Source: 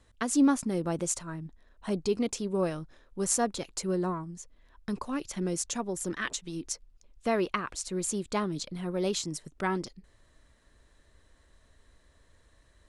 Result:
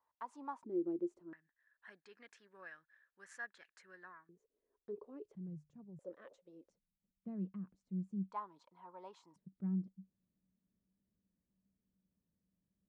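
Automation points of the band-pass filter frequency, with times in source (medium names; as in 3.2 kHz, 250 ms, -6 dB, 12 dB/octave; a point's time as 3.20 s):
band-pass filter, Q 11
950 Hz
from 0.64 s 350 Hz
from 1.33 s 1.7 kHz
from 4.29 s 420 Hz
from 5.35 s 150 Hz
from 5.99 s 540 Hz
from 6.70 s 190 Hz
from 8.32 s 950 Hz
from 9.36 s 190 Hz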